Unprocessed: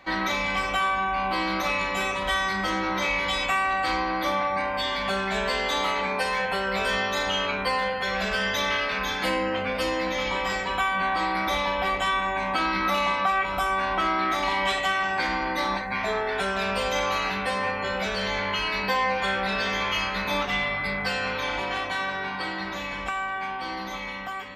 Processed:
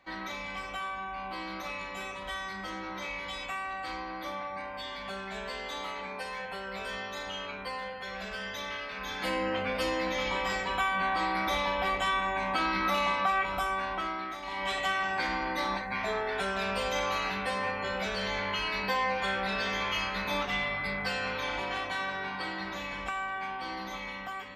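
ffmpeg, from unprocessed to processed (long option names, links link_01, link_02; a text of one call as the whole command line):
ffmpeg -i in.wav -af "volume=6.5dB,afade=type=in:start_time=8.94:duration=0.56:silence=0.398107,afade=type=out:start_time=13.42:duration=1:silence=0.266073,afade=type=in:start_time=14.42:duration=0.41:silence=0.298538" out.wav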